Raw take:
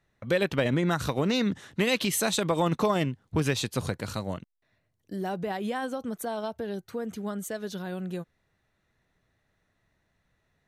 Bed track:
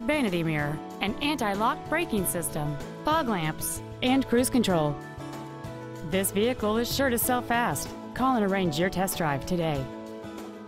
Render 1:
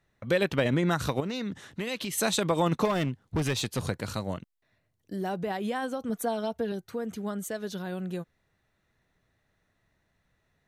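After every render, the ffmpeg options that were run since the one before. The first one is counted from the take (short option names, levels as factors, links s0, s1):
-filter_complex "[0:a]asettb=1/sr,asplit=3[s0][s1][s2];[s0]atrim=end=1.204[s3];[s1]atrim=start=1.2:end=2.18,asetpts=PTS-STARTPTS,afade=t=in:d=0.004:c=qsin,afade=t=out:st=0.976:d=0.004:c=qsin,acompressor=threshold=0.0178:ratio=2:attack=3.2:release=140:knee=1:detection=peak[s4];[s2]atrim=start=2.176[s5];[s3][s4]acrossfade=d=0.004:c1=hsin:c2=qsin[s6];[s6][s5]acrossfade=d=0.004:c1=qsin:c2=hsin,asettb=1/sr,asplit=3[s7][s8][s9];[s7]atrim=end=2.854[s10];[s8]atrim=start=2.85:end=3.88,asetpts=PTS-STARTPTS,afade=t=in:d=0.004:c=qsin,afade=t=out:st=1.026:d=0.004:c=qsin,asoftclip=type=hard:threshold=0.0708[s11];[s9]atrim=start=3.876[s12];[s10][s11]acrossfade=d=0.004:c1=hsin:c2=qsin[s13];[s13][s12]acrossfade=d=0.004:c1=qsin:c2=hsin,asettb=1/sr,asplit=3[s14][s15][s16];[s14]atrim=end=6.094[s17];[s15]atrim=start=6.09:end=6.72,asetpts=PTS-STARTPTS,afade=t=in:d=0.004:c=qsin,afade=t=out:st=0.626:d=0.004:c=qsin,aecho=1:1:4.2:0.65,atrim=end_sample=27783[s18];[s16]atrim=start=6.716[s19];[s17][s18]acrossfade=d=0.004:c1=hsin:c2=qsin[s20];[s20][s19]acrossfade=d=0.004:c1=qsin:c2=hsin"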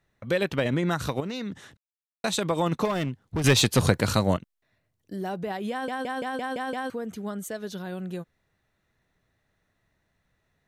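-filter_complex "[0:a]asplit=12[s0][s1][s2][s3][s4][s5][s6][s7][s8][s9][s10][s11];[s0]atrim=end=1.77,asetpts=PTS-STARTPTS,afade=t=out:st=1.766:d=0.004:c=hsin[s12];[s1]atrim=start=1.77:end=2.24,asetpts=PTS-STARTPTS,volume=0[s13];[s2]atrim=start=2.24:end=3.442,asetpts=PTS-STARTPTS,afade=t=in:d=0.004:c=hsin[s14];[s3]atrim=start=3.438:end=4.372,asetpts=PTS-STARTPTS,volume=3.16[s15];[s4]atrim=start=4.368:end=5.882[s16];[s5]atrim=start=5.708:end=5.882[s17];[s6]atrim=start=5.708:end=5.882[s18];[s7]atrim=start=5.708:end=5.882[s19];[s8]atrim=start=5.708:end=5.882[s20];[s9]atrim=start=5.708:end=5.882[s21];[s10]atrim=start=5.708:end=5.882[s22];[s11]atrim=start=6.898[s23];[s12][s13][s14]concat=n=3:v=0:a=1[s24];[s24][s15]acrossfade=d=0.004:c1=hsin:c2=hsin[s25];[s25][s16]acrossfade=d=0.004:c1=hsin:c2=hsin[s26];[s26][s17]acrossfade=d=0.004:c1=hsin:c2=hsin[s27];[s27][s18]acrossfade=d=0.004:c1=hsin:c2=hsin[s28];[s28][s19]acrossfade=d=0.004:c1=hsin:c2=hsin[s29];[s29][s20]acrossfade=d=0.004:c1=hsin:c2=hsin[s30];[s30][s21]acrossfade=d=0.004:c1=hsin:c2=hsin[s31];[s31][s22]acrossfade=d=0.004:c1=hsin:c2=hsin[s32];[s32][s23]acrossfade=d=0.004:c1=hsin:c2=hsin"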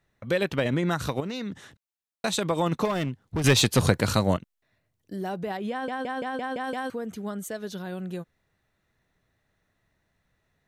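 -filter_complex "[0:a]asettb=1/sr,asplit=3[s0][s1][s2];[s0]atrim=end=5.574[s3];[s1]atrim=start=5.57:end=6.64,asetpts=PTS-STARTPTS,afade=t=in:d=0.004:c=qsin,afade=t=out:st=1.066:d=0.004:c=qsin,lowpass=f=4000:p=1[s4];[s2]atrim=start=6.636[s5];[s3][s4]acrossfade=d=0.004:c1=hsin:c2=qsin[s6];[s6][s5]acrossfade=d=0.004:c1=qsin:c2=hsin"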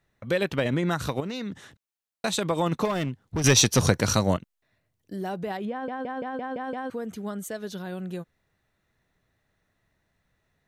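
-filter_complex "[0:a]asettb=1/sr,asplit=3[s0][s1][s2];[s0]atrim=end=3.374[s3];[s1]atrim=start=3.37:end=4.31,asetpts=PTS-STARTPTS,afade=t=in:d=0.004:c=qsin,afade=t=out:st=0.936:d=0.004:c=qsin,equalizer=f=5800:w=7.8:g=14.5[s4];[s2]atrim=start=4.306[s5];[s3][s4]acrossfade=d=0.004:c1=hsin:c2=qsin[s6];[s6][s5]acrossfade=d=0.004:c1=qsin:c2=hsin,asettb=1/sr,asplit=3[s7][s8][s9];[s7]atrim=end=5.654[s10];[s8]atrim=start=5.65:end=6.91,asetpts=PTS-STARTPTS,afade=t=in:d=0.004:c=qsin,afade=t=out:st=1.256:d=0.004:c=qsin,lowpass=f=1200:p=1[s11];[s9]atrim=start=6.906[s12];[s10][s11]acrossfade=d=0.004:c1=hsin:c2=qsin[s13];[s13][s12]acrossfade=d=0.004:c1=qsin:c2=hsin"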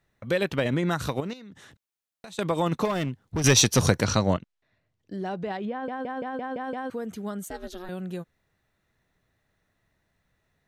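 -filter_complex "[0:a]asettb=1/sr,asplit=3[s0][s1][s2];[s0]atrim=end=1.334[s3];[s1]atrim=start=1.33:end=2.39,asetpts=PTS-STARTPTS,afade=t=in:d=0.004:c=qsin,afade=t=out:st=1.056:d=0.004:c=qsin,acompressor=threshold=0.00501:ratio=3:attack=3.2:release=140:knee=1:detection=peak[s4];[s2]atrim=start=2.386[s5];[s3][s4]acrossfade=d=0.004:c1=hsin:c2=qsin[s6];[s6][s5]acrossfade=d=0.004:c1=qsin:c2=hsin,asettb=1/sr,asplit=3[s7][s8][s9];[s7]atrim=end=4.044[s10];[s8]atrim=start=4.04:end=5.85,asetpts=PTS-STARTPTS,afade=t=in:d=0.004:c=qsin,afade=t=out:st=1.806:d=0.004:c=qsin,lowpass=5300[s11];[s9]atrim=start=5.846[s12];[s10][s11]acrossfade=d=0.004:c1=hsin:c2=qsin[s13];[s13][s12]acrossfade=d=0.004:c1=qsin:c2=hsin,asettb=1/sr,asplit=3[s14][s15][s16];[s14]atrim=end=7.454[s17];[s15]atrim=start=7.45:end=7.89,asetpts=PTS-STARTPTS,afade=t=in:d=0.004:c=qsin,afade=t=out:st=0.436:d=0.004:c=qsin,aeval=exprs='val(0)*sin(2*PI*180*n/s)':c=same[s18];[s16]atrim=start=7.886[s19];[s17][s18]acrossfade=d=0.004:c1=hsin:c2=qsin[s20];[s20][s19]acrossfade=d=0.004:c1=qsin:c2=hsin"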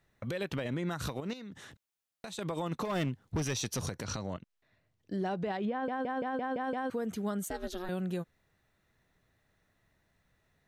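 -af "acompressor=threshold=0.0398:ratio=6,alimiter=level_in=1.26:limit=0.0631:level=0:latency=1:release=108,volume=0.794"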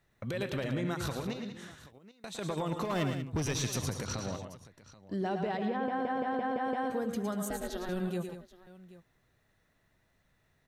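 -af "aecho=1:1:106|114|188|780:0.299|0.376|0.282|0.119"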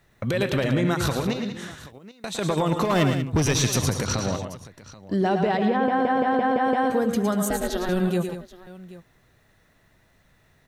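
-af "volume=3.55"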